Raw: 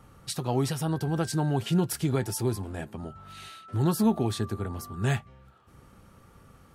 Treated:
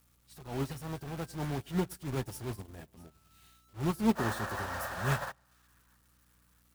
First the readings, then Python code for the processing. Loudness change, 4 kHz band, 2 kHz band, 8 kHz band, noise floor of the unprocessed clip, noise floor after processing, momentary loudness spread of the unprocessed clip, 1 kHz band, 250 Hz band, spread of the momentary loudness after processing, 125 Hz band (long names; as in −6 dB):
−6.5 dB, −8.0 dB, +1.0 dB, −10.0 dB, −56 dBFS, −68 dBFS, 14 LU, −3.0 dB, −7.0 dB, 17 LU, −8.5 dB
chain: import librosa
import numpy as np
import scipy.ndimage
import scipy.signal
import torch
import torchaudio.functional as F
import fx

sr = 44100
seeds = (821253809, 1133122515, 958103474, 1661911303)

p1 = x + 0.5 * 10.0 ** (-24.5 / 20.0) * np.diff(np.sign(x), prepend=np.sign(x[:1]))
p2 = fx.spec_paint(p1, sr, seeds[0], shape='noise', start_s=4.15, length_s=1.17, low_hz=500.0, high_hz=1900.0, level_db=-28.0)
p3 = (np.mod(10.0 ** (27.5 / 20.0) * p2 + 1.0, 2.0) - 1.0) / 10.0 ** (27.5 / 20.0)
p4 = p2 + (p3 * 10.0 ** (-3.5 / 20.0))
p5 = fx.add_hum(p4, sr, base_hz=60, snr_db=17)
p6 = fx.high_shelf(p5, sr, hz=3300.0, db=-5.5)
p7 = fx.transient(p6, sr, attack_db=-8, sustain_db=-4)
p8 = fx.echo_split(p7, sr, split_hz=1000.0, low_ms=100, high_ms=649, feedback_pct=52, wet_db=-16)
y = fx.upward_expand(p8, sr, threshold_db=-39.0, expansion=2.5)